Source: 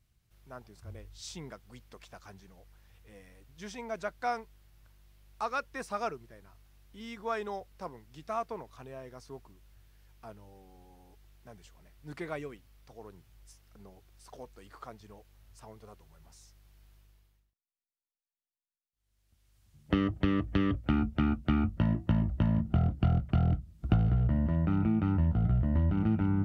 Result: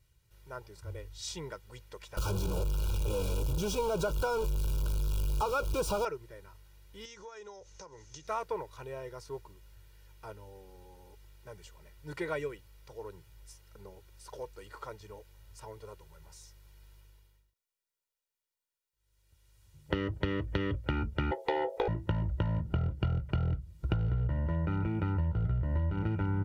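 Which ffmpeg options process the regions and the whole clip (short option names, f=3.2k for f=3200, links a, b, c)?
-filter_complex "[0:a]asettb=1/sr,asplit=3[a][b][c];[a]atrim=end=2.174[d];[b]atrim=start=2.17:end=6.05,asetpts=PTS-STARTPTS,afade=t=in:d=0.004:c=qsin,afade=t=out:st=3.876:d=0.004:c=qsin,aeval=exprs='val(0)+0.5*0.0168*sgn(val(0))':c=same,asuperstop=centerf=1900:order=4:qfactor=1.9,lowshelf=f=440:g=11[e];[c]atrim=start=6.046[f];[d][e]acrossfade=d=0.004:c1=hsin:c2=qsin[g];[g][f]acrossfade=d=0.004:c1=qsin:c2=hsin,asettb=1/sr,asplit=3[h][i][j];[h]atrim=end=7.054[k];[i]atrim=start=7.05:end=8.27,asetpts=PTS-STARTPTS,afade=t=in:d=0.004:c=qsin,afade=t=out:st=1.216:d=0.004:c=qsin,acompressor=threshold=-49dB:ratio=10:attack=3.2:release=140:knee=1:detection=peak,lowpass=f=6.3k:t=q:w=9.8[l];[j]atrim=start=8.266[m];[k][l]acrossfade=d=0.004:c1=hsin:c2=qsin[n];[n][m]acrossfade=d=0.004:c1=qsin:c2=hsin,asettb=1/sr,asplit=3[o][p][q];[o]atrim=end=21.314[r];[p]atrim=start=21.31:end=21.88,asetpts=PTS-STARTPTS,afade=t=in:d=0.004:c=qsin,afade=t=out:st=0.566:d=0.004:c=qsin,aeval=exprs='val(0)*sin(2*PI*600*n/s)':c=same,highshelf=f=2.9k:g=8.5[s];[q]atrim=start=21.876[t];[r][s]acrossfade=d=0.004:c1=hsin:c2=qsin[u];[u][t]acrossfade=d=0.004:c1=qsin:c2=hsin,lowshelf=f=63:g=-5.5,aecho=1:1:2.1:0.78,acompressor=threshold=-30dB:ratio=4,volume=2dB"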